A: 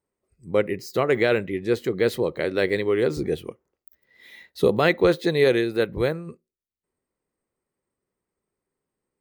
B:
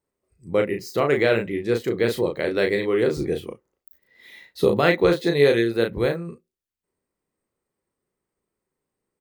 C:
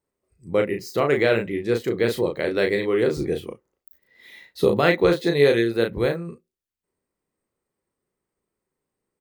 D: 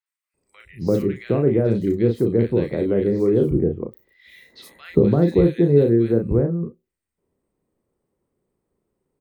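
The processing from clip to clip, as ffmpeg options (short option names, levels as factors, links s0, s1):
-filter_complex "[0:a]asplit=2[s0][s1];[s1]adelay=35,volume=0.562[s2];[s0][s2]amix=inputs=2:normalize=0"
-af anull
-filter_complex "[0:a]acrossover=split=340[s0][s1];[s1]acompressor=threshold=0.0158:ratio=3[s2];[s0][s2]amix=inputs=2:normalize=0,tiltshelf=f=970:g=5.5,acrossover=split=1600|5100[s3][s4][s5];[s5]adelay=60[s6];[s3]adelay=340[s7];[s7][s4][s6]amix=inputs=3:normalize=0,volume=1.68"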